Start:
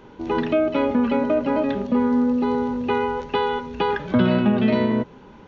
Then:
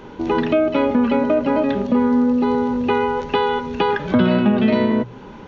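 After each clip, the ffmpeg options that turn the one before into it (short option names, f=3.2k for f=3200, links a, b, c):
-filter_complex "[0:a]bandreject=f=60:t=h:w=6,bandreject=f=120:t=h:w=6,asplit=2[a][b];[b]acompressor=threshold=-28dB:ratio=6,volume=3dB[c];[a][c]amix=inputs=2:normalize=0"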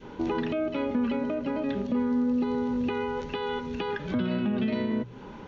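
-af "alimiter=limit=-13dB:level=0:latency=1:release=226,adynamicequalizer=threshold=0.0141:dfrequency=830:dqfactor=0.83:tfrequency=830:tqfactor=0.83:attack=5:release=100:ratio=0.375:range=3:mode=cutabove:tftype=bell,volume=-5dB"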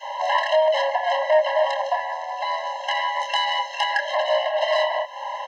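-filter_complex "[0:a]asplit=2[a][b];[b]adelay=26,volume=-4dB[c];[a][c]amix=inputs=2:normalize=0,aeval=exprs='0.15*sin(PI/2*2.51*val(0)/0.15)':c=same,afftfilt=real='re*eq(mod(floor(b*sr/1024/540),2),1)':imag='im*eq(mod(floor(b*sr/1024/540),2),1)':win_size=1024:overlap=0.75,volume=6.5dB"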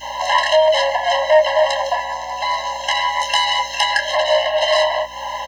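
-filter_complex "[0:a]crystalizer=i=3.5:c=0,aeval=exprs='val(0)+0.00316*(sin(2*PI*60*n/s)+sin(2*PI*2*60*n/s)/2+sin(2*PI*3*60*n/s)/3+sin(2*PI*4*60*n/s)/4+sin(2*PI*5*60*n/s)/5)':c=same,asplit=2[a][b];[b]adelay=13,volume=-9dB[c];[a][c]amix=inputs=2:normalize=0,volume=2.5dB"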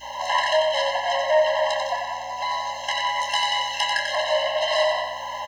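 -af "aecho=1:1:92|184|276|368|460|552|644:0.562|0.304|0.164|0.0885|0.0478|0.0258|0.0139,volume=-7dB"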